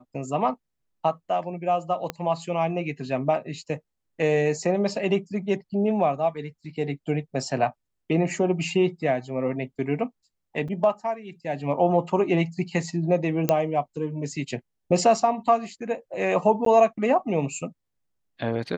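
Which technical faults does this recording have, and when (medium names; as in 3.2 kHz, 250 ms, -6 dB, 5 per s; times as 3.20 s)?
2.10 s: pop -13 dBFS
10.68–10.69 s: dropout 5.1 ms
13.49 s: pop -7 dBFS
16.65–16.66 s: dropout 13 ms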